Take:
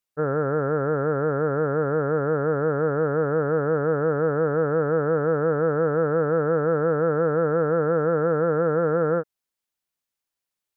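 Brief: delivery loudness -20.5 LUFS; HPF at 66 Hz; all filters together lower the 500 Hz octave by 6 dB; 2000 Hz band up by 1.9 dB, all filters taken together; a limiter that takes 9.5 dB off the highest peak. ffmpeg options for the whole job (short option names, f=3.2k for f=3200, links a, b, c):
-af "highpass=66,equalizer=f=500:t=o:g=-6.5,equalizer=f=2k:t=o:g=3.5,volume=14.5dB,alimiter=limit=-10dB:level=0:latency=1"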